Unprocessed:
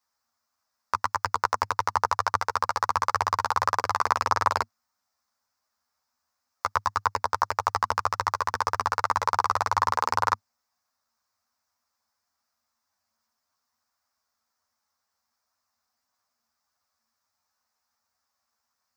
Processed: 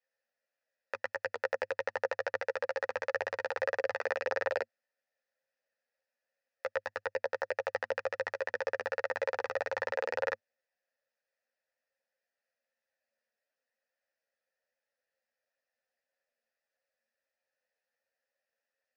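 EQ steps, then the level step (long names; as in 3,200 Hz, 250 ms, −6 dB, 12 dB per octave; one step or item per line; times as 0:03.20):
formant filter e
high-shelf EQ 9,600 Hz −5 dB
+9.0 dB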